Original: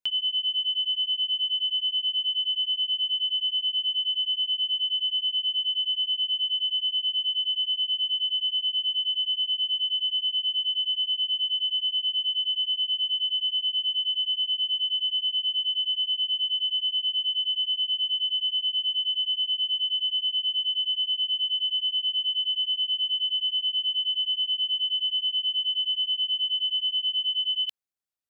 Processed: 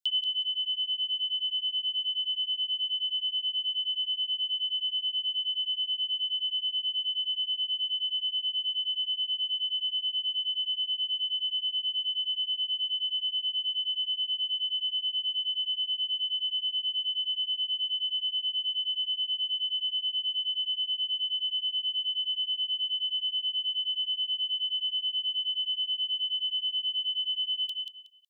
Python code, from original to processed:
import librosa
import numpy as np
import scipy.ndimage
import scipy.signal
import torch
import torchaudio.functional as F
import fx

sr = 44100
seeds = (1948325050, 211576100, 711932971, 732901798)

y = scipy.signal.sosfilt(scipy.signal.butter(16, 2900.0, 'highpass', fs=sr, output='sos'), x)
y = fx.echo_feedback(y, sr, ms=184, feedback_pct=21, wet_db=-5.5)